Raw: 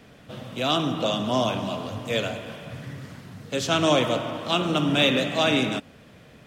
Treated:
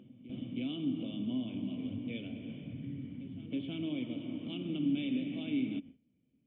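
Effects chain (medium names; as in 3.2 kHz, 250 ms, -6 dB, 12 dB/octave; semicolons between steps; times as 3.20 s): gate with hold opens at -36 dBFS; compression 3:1, threshold -32 dBFS, peak gain reduction 12.5 dB; cascade formant filter i; on a send: reverse echo 319 ms -14 dB; on the sum: tape noise reduction on one side only decoder only; trim +5 dB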